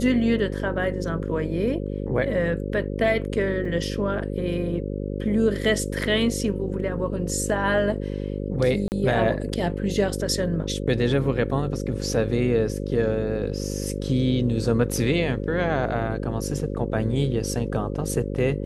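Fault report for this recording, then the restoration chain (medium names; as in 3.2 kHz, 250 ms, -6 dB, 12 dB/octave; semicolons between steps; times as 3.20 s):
buzz 50 Hz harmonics 11 -29 dBFS
3.65 s: dropout 3.3 ms
8.88–8.92 s: dropout 39 ms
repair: de-hum 50 Hz, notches 11; interpolate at 3.65 s, 3.3 ms; interpolate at 8.88 s, 39 ms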